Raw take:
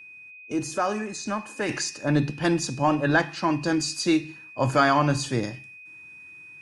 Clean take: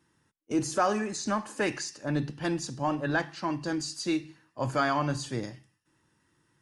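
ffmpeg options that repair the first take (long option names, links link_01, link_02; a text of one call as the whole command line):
ffmpeg -i in.wav -af "bandreject=frequency=2500:width=30,asetnsamples=nb_out_samples=441:pad=0,asendcmd='1.69 volume volume -7dB',volume=0dB" out.wav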